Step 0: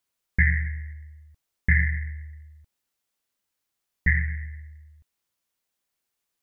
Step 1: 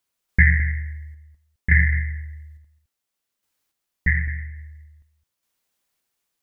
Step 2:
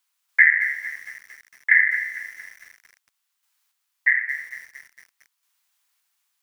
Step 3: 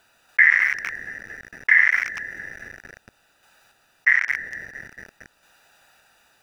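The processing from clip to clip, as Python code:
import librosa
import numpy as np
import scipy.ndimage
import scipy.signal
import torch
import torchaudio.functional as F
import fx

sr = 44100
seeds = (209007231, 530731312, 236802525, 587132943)

y1 = fx.tremolo_random(x, sr, seeds[0], hz=3.5, depth_pct=55)
y1 = y1 + 10.0 ** (-14.5 / 20.0) * np.pad(y1, (int(213 * sr / 1000.0), 0))[:len(y1)]
y1 = F.gain(torch.from_numpy(y1), 5.5).numpy()
y2 = scipy.signal.sosfilt(scipy.signal.butter(4, 880.0, 'highpass', fs=sr, output='sos'), y1)
y2 = fx.echo_crushed(y2, sr, ms=227, feedback_pct=55, bits=7, wet_db=-13.5)
y2 = F.gain(torch.from_numpy(y2), 4.5).numpy()
y3 = fx.wiener(y2, sr, points=41)
y3 = fx.env_flatten(y3, sr, amount_pct=50)
y3 = F.gain(torch.from_numpy(y3), -1.0).numpy()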